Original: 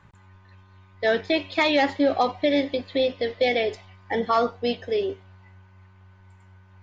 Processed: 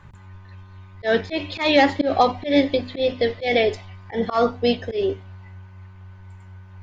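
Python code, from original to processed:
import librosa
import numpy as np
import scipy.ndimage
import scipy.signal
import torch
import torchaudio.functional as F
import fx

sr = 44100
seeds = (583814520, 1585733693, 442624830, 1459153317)

y = fx.low_shelf(x, sr, hz=130.0, db=9.0)
y = fx.hum_notches(y, sr, base_hz=50, count=6)
y = fx.auto_swell(y, sr, attack_ms=129.0)
y = y * librosa.db_to_amplitude(5.0)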